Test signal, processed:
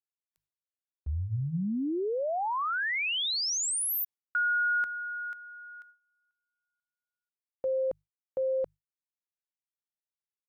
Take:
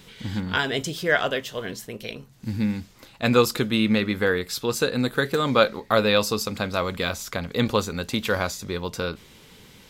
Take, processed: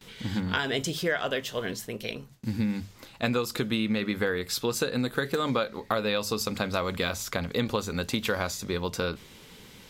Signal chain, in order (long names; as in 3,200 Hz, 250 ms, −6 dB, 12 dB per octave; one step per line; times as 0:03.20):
mains-hum notches 50/100/150 Hz
noise gate with hold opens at −40 dBFS
downward compressor 12 to 1, threshold −23 dBFS